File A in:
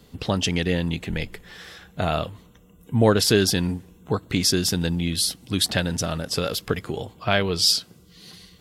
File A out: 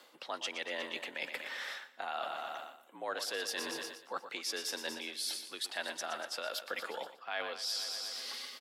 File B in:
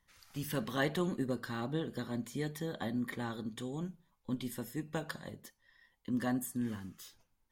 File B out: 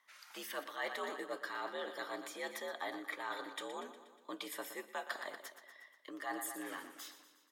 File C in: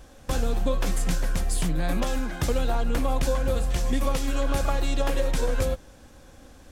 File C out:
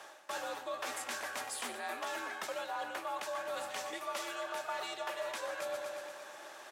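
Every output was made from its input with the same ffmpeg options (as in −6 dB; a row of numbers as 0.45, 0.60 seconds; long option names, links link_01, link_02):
-af "highpass=810,highshelf=frequency=2800:gain=-10,aecho=1:1:120|240|360|480|600|720|840:0.237|0.14|0.0825|0.0487|0.0287|0.017|0.01,afreqshift=64,areverse,acompressor=threshold=-48dB:ratio=5,areverse,volume=10dB"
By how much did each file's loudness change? −15.5, −5.5, −12.0 LU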